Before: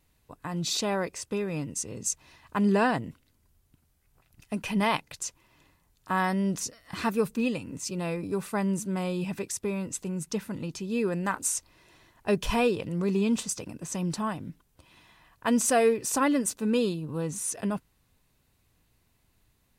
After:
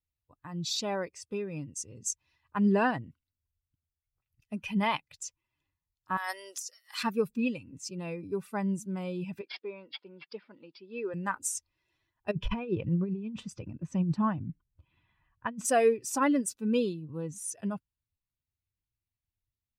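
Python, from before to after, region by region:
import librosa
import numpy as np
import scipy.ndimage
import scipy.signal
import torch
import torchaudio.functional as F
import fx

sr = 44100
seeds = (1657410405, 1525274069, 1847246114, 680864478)

y = fx.chain(x, sr, fx.bessel_highpass(hz=640.0, order=6),
    fx.peak_eq(hz=11000.0, db=10.5, octaves=2.2),
    fx.over_compress(threshold_db=-31.0, ratio=-1.0), at=(6.17, 7.03))
y = fx.chain(y, sr, fx.resample_bad(factor=4, down='none', up='filtered'),
    fx.highpass(hz=360.0, slope=12),
    fx.high_shelf(hz=3700.0, db=-8.0), at=(9.41, 11.14))
y = fx.chain(y, sr, fx.bass_treble(bass_db=5, treble_db=-14),
    fx.over_compress(threshold_db=-26.0, ratio=-0.5), at=(12.31, 15.65))
y = fx.bin_expand(y, sr, power=1.5)
y = fx.high_shelf(y, sr, hz=11000.0, db=-8.0)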